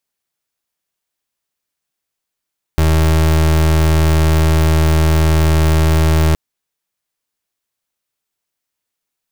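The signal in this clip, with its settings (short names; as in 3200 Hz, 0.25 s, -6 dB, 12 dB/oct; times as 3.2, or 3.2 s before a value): pulse 79.3 Hz, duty 32% -11.5 dBFS 3.57 s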